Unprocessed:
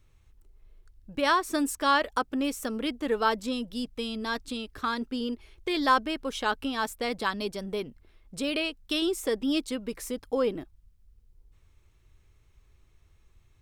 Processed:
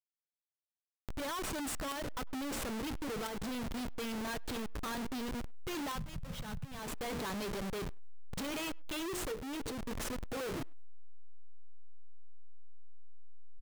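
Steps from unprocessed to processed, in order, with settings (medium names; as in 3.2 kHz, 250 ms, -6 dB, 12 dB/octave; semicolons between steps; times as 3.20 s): hum notches 60/120/180/240/300/360/420/480/540 Hz; companded quantiser 2-bit; hysteresis with a dead band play -25 dBFS; 9.31–9.75 s: peaking EQ 450 Hz +11 dB 0.23 oct; saturation -10 dBFS, distortion -21 dB; 5.95–6.79 s: resonant low shelf 220 Hz +11 dB, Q 3; compression 8:1, threshold -41 dBFS, peak gain reduction 23 dB; speakerphone echo 100 ms, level -28 dB; trim +2 dB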